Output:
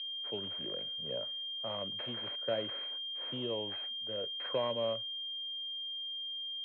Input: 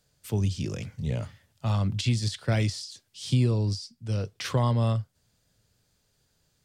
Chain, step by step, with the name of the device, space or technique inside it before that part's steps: toy sound module (decimation joined by straight lines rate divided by 6×; class-D stage that switches slowly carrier 3.2 kHz; cabinet simulation 510–4000 Hz, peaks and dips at 560 Hz +7 dB, 800 Hz -8 dB, 1.2 kHz -5 dB); 3.50–3.93 s: peaking EQ 810 Hz +10.5 dB 0.29 oct; trim -2 dB

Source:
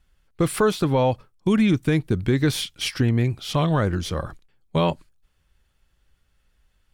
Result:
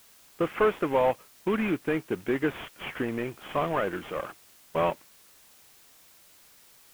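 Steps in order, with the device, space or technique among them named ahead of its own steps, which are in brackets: army field radio (band-pass 370–3000 Hz; CVSD coder 16 kbps; white noise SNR 26 dB)

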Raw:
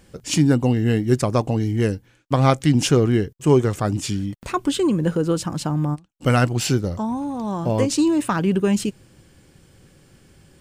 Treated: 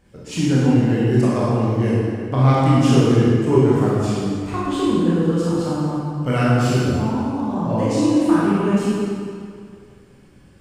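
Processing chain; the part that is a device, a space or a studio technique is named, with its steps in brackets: swimming-pool hall (reverberation RT60 2.2 s, pre-delay 22 ms, DRR -8.5 dB; treble shelf 3.5 kHz -8 dB); trim -6.5 dB

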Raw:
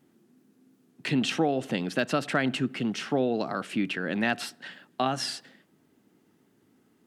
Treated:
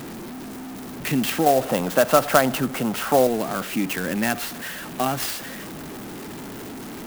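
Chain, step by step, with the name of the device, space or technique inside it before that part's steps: 1.46–3.27 s: high-order bell 830 Hz +10.5 dB; early CD player with a faulty converter (jump at every zero crossing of -31.5 dBFS; sampling jitter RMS 0.047 ms); trim +2 dB

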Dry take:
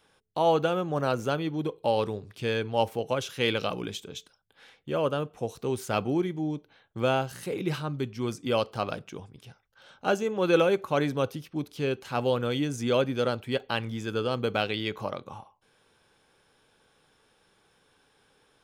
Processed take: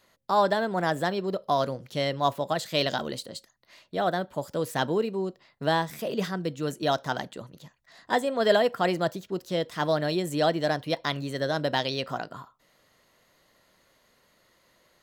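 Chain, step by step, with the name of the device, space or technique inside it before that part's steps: nightcore (tape speed +24%); trim +1 dB

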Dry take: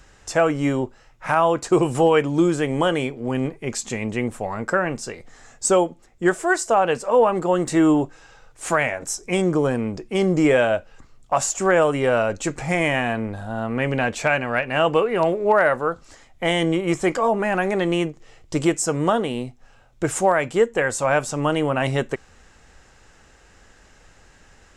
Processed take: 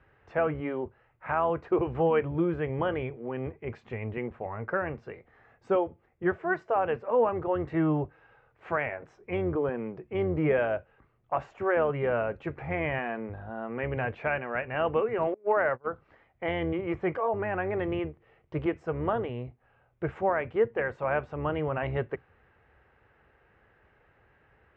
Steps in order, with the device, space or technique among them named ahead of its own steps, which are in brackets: sub-octave bass pedal (octave divider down 1 oct, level -5 dB; cabinet simulation 79–2400 Hz, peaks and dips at 190 Hz -6 dB, 270 Hz -6 dB, 420 Hz +3 dB); bass shelf 170 Hz +2.5 dB; 15.34–15.87 s: gate -19 dBFS, range -25 dB; trim -9 dB

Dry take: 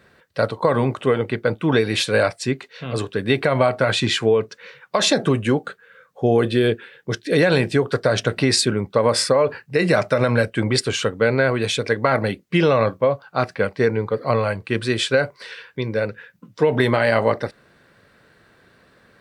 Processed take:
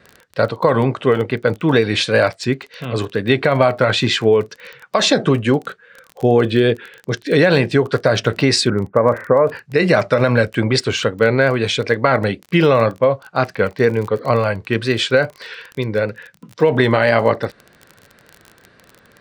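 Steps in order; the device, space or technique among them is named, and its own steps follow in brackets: 8.70–9.48 s: steep low-pass 2 kHz 48 dB/octave; lo-fi chain (low-pass 6.3 kHz 12 dB/octave; wow and flutter; crackle 24 per s -29 dBFS); trim +3.5 dB

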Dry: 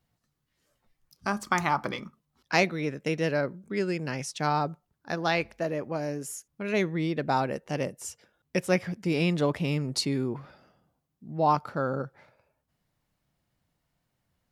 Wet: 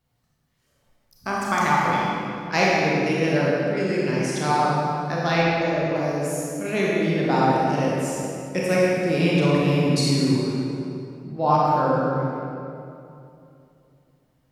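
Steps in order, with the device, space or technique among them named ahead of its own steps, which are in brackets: stairwell (reverberation RT60 2.7 s, pre-delay 27 ms, DRR -6 dB); 5.42–5.96 s: low-pass 7.3 kHz 12 dB/octave

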